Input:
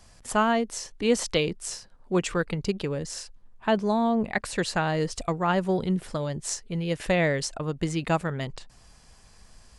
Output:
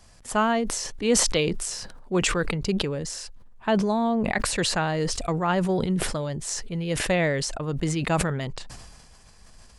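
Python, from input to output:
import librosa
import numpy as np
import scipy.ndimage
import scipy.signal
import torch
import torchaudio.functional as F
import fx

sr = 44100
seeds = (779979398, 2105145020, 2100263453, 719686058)

y = fx.sustainer(x, sr, db_per_s=35.0)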